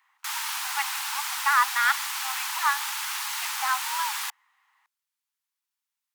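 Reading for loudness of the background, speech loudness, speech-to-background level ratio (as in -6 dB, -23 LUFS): -29.0 LUFS, -27.5 LUFS, 1.5 dB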